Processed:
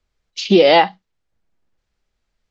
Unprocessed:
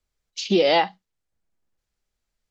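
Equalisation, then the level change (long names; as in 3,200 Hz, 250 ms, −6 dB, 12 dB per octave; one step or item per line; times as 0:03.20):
Bessel low-pass filter 4,500 Hz, order 2
+7.5 dB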